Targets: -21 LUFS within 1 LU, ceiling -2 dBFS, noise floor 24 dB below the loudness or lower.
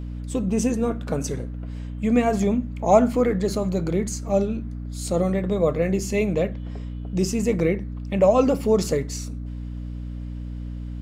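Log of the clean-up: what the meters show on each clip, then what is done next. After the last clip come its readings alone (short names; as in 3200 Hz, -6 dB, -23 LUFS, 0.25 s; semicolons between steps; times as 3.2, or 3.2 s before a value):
hum 60 Hz; harmonics up to 300 Hz; hum level -29 dBFS; loudness -23.0 LUFS; peak -2.5 dBFS; loudness target -21.0 LUFS
-> notches 60/120/180/240/300 Hz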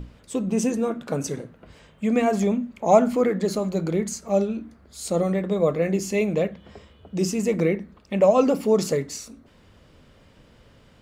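hum none; loudness -23.5 LUFS; peak -3.5 dBFS; loudness target -21.0 LUFS
-> gain +2.5 dB; limiter -2 dBFS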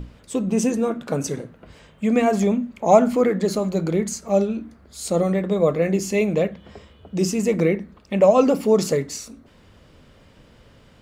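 loudness -21.0 LUFS; peak -2.0 dBFS; noise floor -52 dBFS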